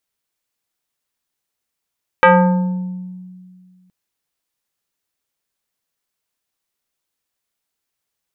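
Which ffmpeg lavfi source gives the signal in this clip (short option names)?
-f lavfi -i "aevalsrc='0.596*pow(10,-3*t/2.13)*sin(2*PI*183*t+2.5*pow(10,-3*t/1.28)*sin(2*PI*3.87*183*t))':d=1.67:s=44100"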